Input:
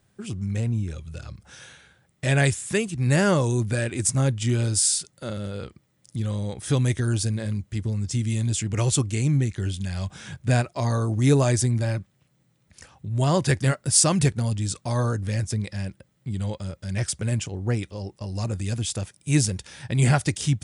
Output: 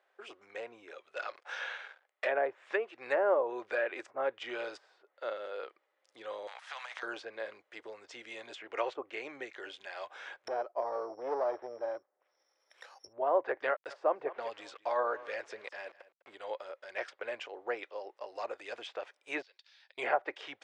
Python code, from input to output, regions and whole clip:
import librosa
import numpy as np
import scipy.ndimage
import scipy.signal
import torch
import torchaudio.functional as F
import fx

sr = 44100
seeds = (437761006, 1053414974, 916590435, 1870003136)

y = fx.chain(x, sr, fx.low_shelf(hz=290.0, db=-12.0),
    fx.leveller(passes=3), at=(1.16, 2.25))
y = fx.chain(y, sr, fx.cheby2_highpass(hz=430.0, order=4, stop_db=40),
    fx.transient(attack_db=-12, sustain_db=8),
    fx.spectral_comp(ratio=2.0), at=(6.47, 7.03))
y = fx.chain(y, sr, fx.overload_stage(gain_db=20.5),
    fx.resample_bad(factor=8, down='filtered', up='zero_stuff'), at=(10.47, 13.13))
y = fx.chain(y, sr, fx.sample_gate(floor_db=-43.5),
    fx.echo_single(ms=204, db=-18.5), at=(13.7, 16.35))
y = fx.chain(y, sr, fx.bandpass_q(hz=4400.0, q=3.6),
    fx.auto_swell(attack_ms=170.0), at=(19.42, 19.98))
y = scipy.signal.sosfilt(scipy.signal.cheby2(4, 50, 190.0, 'highpass', fs=sr, output='sos'), y)
y = fx.env_lowpass_down(y, sr, base_hz=820.0, full_db=-22.5)
y = scipy.signal.sosfilt(scipy.signal.butter(2, 2200.0, 'lowpass', fs=sr, output='sos'), y)